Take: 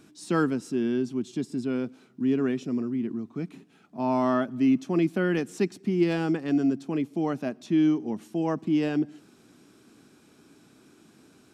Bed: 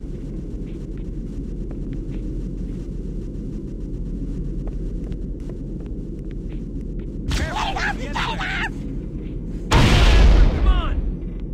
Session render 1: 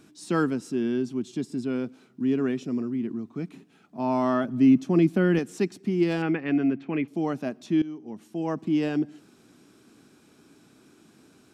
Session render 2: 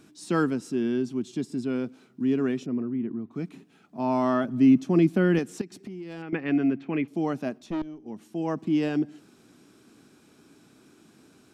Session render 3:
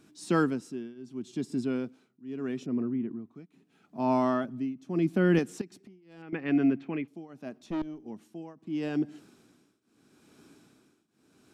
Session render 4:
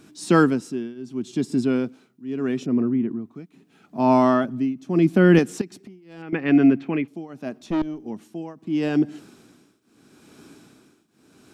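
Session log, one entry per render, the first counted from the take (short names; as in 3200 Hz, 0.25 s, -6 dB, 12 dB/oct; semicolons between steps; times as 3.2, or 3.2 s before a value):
4.44–5.39 low shelf 300 Hz +7.5 dB; 6.22–7.08 synth low-pass 2300 Hz, resonance Q 3.1; 7.82–8.64 fade in, from -18.5 dB
2.66–3.31 air absorption 370 m; 5.61–6.33 compressor 10:1, threshold -35 dBFS; 7.58–8.06 tube stage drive 26 dB, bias 0.7
tremolo triangle 0.79 Hz, depth 95%
gain +9 dB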